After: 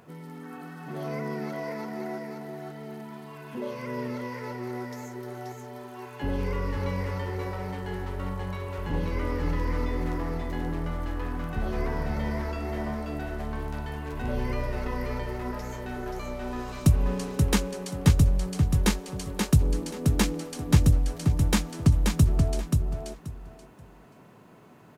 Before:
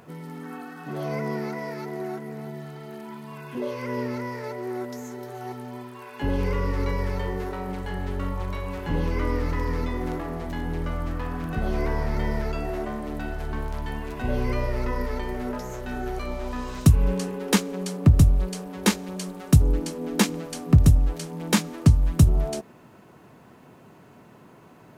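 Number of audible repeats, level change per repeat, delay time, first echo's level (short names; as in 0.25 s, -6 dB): 3, -14.0 dB, 0.531 s, -4.0 dB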